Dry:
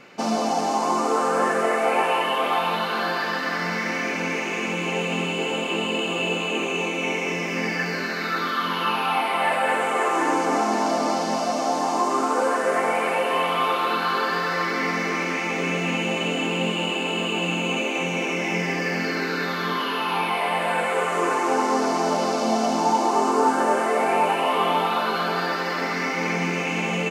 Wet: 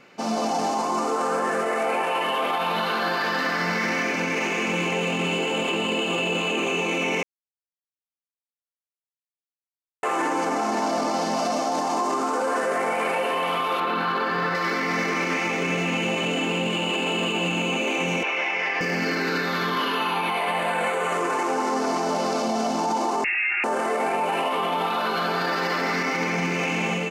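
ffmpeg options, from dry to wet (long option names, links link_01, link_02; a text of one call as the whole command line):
ffmpeg -i in.wav -filter_complex "[0:a]asettb=1/sr,asplit=3[link_01][link_02][link_03];[link_01]atrim=end=13.804[link_04];[link_02]atrim=start=13.8:end=14.55,asetpts=PTS-STARTPTS,afade=type=in:duration=0.004:curve=qsin,afade=type=out:start_time=0.746:duration=0.004:curve=qsin,bass=frequency=250:gain=5,treble=frequency=4000:gain=-10[link_05];[link_03]atrim=start=14.546[link_06];[link_04][link_05]acrossfade=duration=0.004:curve1=hsin:curve2=qsin[link_07];[link_07][link_06]acrossfade=duration=0.004:curve1=qsin:curve2=hsin,asettb=1/sr,asplit=3[link_08][link_09][link_10];[link_08]atrim=end=18.234[link_11];[link_09]atrim=start=18.23:end=18.81,asetpts=PTS-STARTPTS,afade=type=in:duration=0.004:curve=qsin,afade=type=out:start_time=0.576:duration=0.004:curve=qsin,highpass=750,lowpass=3100[link_12];[link_10]atrim=start=18.806[link_13];[link_11][link_12]acrossfade=duration=0.004:curve1=hsin:curve2=qsin[link_14];[link_14][link_13]acrossfade=duration=0.004:curve1=qsin:curve2=hsin,asettb=1/sr,asplit=3[link_15][link_16][link_17];[link_15]atrim=end=19.954[link_18];[link_16]atrim=start=19.95:end=21.13,asetpts=PTS-STARTPTS,afade=type=in:duration=0.004:curve=qsin,afade=type=out:start_time=1.176:duration=0.004:curve=qsin,asuperstop=centerf=5200:order=12:qfactor=8[link_19];[link_17]atrim=start=21.126[link_20];[link_18][link_19]acrossfade=duration=0.004:curve1=hsin:curve2=qsin[link_21];[link_21][link_20]acrossfade=duration=0.004:curve1=qsin:curve2=hsin,asettb=1/sr,asplit=3[link_22][link_23][link_24];[link_22]atrim=end=23.244[link_25];[link_23]atrim=start=23.24:end=23.64,asetpts=PTS-STARTPTS,afade=type=in:duration=0.004:curve=qsin,afade=type=out:start_time=0.396:duration=0.004:curve=qsin,lowpass=frequency=2600:width_type=q:width=0.5098,lowpass=frequency=2600:width_type=q:width=0.6013,lowpass=frequency=2600:width_type=q:width=0.9,lowpass=frequency=2600:width_type=q:width=2.563,afreqshift=-3000[link_26];[link_24]atrim=start=23.636[link_27];[link_25][link_26]acrossfade=duration=0.004:curve1=hsin:curve2=qsin[link_28];[link_28][link_27]acrossfade=duration=0.004:curve1=qsin:curve2=hsin,asplit=3[link_29][link_30][link_31];[link_29]atrim=end=7.23,asetpts=PTS-STARTPTS,afade=type=out:start_time=7.226:duration=0.004:curve=hsin[link_32];[link_30]atrim=start=7.23:end=10.03,asetpts=PTS-STARTPTS,volume=0[link_33];[link_31]atrim=start=10.03,asetpts=PTS-STARTPTS,afade=type=in:duration=0.004:curve=hsin[link_34];[link_32][link_33][link_34]concat=n=3:v=0:a=1,dynaudnorm=framelen=180:gausssize=5:maxgain=11.5dB,alimiter=limit=-12.5dB:level=0:latency=1:release=30,volume=-4dB" out.wav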